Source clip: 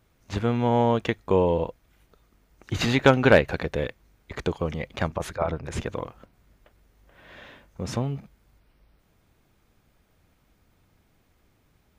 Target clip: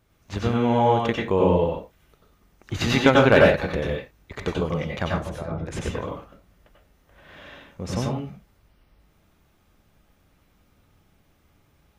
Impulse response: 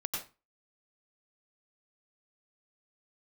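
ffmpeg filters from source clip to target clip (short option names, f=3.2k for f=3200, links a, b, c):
-filter_complex "[0:a]asettb=1/sr,asplit=3[a][b][c];[a]atrim=end=5.114[d];[b]atrim=start=5.11:end=5.67,asetpts=PTS-STARTPTS,afade=t=in:d=0.004:c=qsin,afade=t=out:st=0.556:d=0.004:c=qsin,acrossover=split=410[e][f];[f]acompressor=threshold=-39dB:ratio=5[g];[e][g]amix=inputs=2:normalize=0[h];[c]atrim=start=5.666[i];[d][h]acrossfade=d=0.004:c1=hsin:c2=qsin[j];[j][i]acrossfade=d=0.004:c1=qsin:c2=hsin[k];[1:a]atrim=start_sample=2205,afade=t=out:st=0.26:d=0.01,atrim=end_sample=11907[l];[k][l]afir=irnorm=-1:irlink=0"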